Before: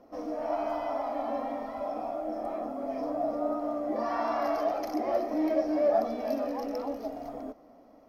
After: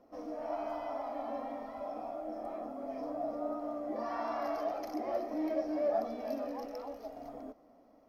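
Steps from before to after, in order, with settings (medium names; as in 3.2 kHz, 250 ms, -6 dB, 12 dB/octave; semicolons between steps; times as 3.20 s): 6.65–7.17 s: peaking EQ 240 Hz -7 dB 1.3 oct; trim -6.5 dB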